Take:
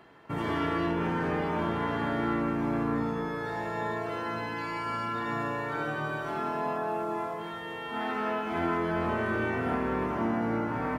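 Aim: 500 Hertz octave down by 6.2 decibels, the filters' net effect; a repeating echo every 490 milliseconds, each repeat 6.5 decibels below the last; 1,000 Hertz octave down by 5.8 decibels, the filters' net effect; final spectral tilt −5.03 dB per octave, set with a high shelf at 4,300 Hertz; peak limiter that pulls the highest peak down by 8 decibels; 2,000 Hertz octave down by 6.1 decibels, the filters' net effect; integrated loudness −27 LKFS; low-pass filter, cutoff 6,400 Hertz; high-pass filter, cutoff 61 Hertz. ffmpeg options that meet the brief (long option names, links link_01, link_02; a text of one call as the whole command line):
ffmpeg -i in.wav -af "highpass=61,lowpass=6400,equalizer=frequency=500:width_type=o:gain=-7.5,equalizer=frequency=1000:width_type=o:gain=-3.5,equalizer=frequency=2000:width_type=o:gain=-7,highshelf=frequency=4300:gain=5,alimiter=level_in=5dB:limit=-24dB:level=0:latency=1,volume=-5dB,aecho=1:1:490|980|1470|1960|2450|2940:0.473|0.222|0.105|0.0491|0.0231|0.0109,volume=10.5dB" out.wav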